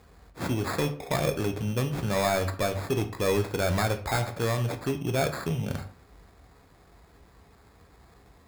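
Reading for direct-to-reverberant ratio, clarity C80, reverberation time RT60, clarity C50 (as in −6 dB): 6.0 dB, 17.0 dB, 0.50 s, 12.5 dB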